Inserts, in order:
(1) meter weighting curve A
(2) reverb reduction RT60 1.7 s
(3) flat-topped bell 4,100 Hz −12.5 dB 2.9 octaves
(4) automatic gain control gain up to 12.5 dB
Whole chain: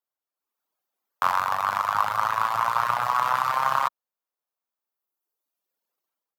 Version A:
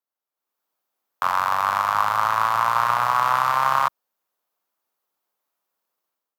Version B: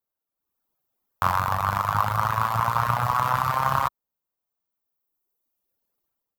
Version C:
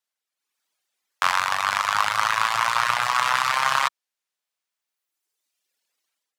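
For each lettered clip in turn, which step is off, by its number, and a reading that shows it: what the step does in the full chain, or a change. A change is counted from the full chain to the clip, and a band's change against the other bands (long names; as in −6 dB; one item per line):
2, change in integrated loudness +3.5 LU
1, 125 Hz band +17.0 dB
3, 4 kHz band +11.5 dB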